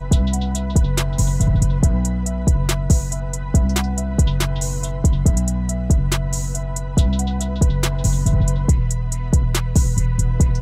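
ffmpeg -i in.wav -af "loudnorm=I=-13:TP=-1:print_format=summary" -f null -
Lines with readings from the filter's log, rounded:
Input Integrated:    -19.5 LUFS
Input True Peak:      -4.4 dBTP
Input LRA:             1.5 LU
Input Threshold:     -29.5 LUFS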